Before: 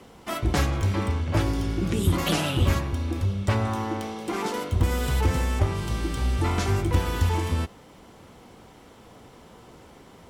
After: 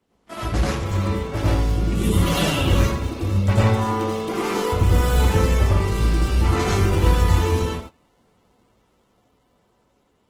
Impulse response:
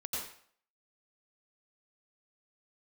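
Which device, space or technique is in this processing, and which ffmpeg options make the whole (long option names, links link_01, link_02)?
speakerphone in a meeting room: -filter_complex "[1:a]atrim=start_sample=2205[link_01];[0:a][link_01]afir=irnorm=-1:irlink=0,dynaudnorm=framelen=950:gausssize=5:maxgain=4dB,agate=range=-17dB:threshold=-34dB:ratio=16:detection=peak" -ar 48000 -c:a libopus -b:a 16k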